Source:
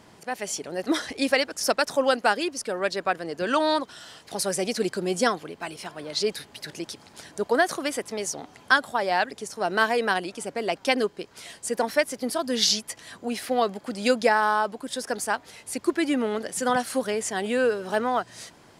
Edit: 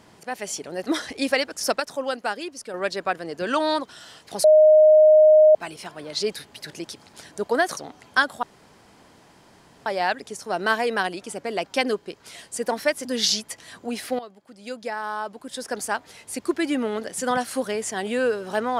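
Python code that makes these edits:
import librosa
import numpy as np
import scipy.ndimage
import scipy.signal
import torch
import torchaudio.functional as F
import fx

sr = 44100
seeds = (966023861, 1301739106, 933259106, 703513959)

y = fx.edit(x, sr, fx.clip_gain(start_s=1.8, length_s=0.94, db=-5.5),
    fx.bleep(start_s=4.44, length_s=1.11, hz=618.0, db=-9.5),
    fx.cut(start_s=7.77, length_s=0.54),
    fx.insert_room_tone(at_s=8.97, length_s=1.43),
    fx.cut(start_s=12.16, length_s=0.28),
    fx.fade_in_from(start_s=13.58, length_s=1.59, curve='qua', floor_db=-17.0), tone=tone)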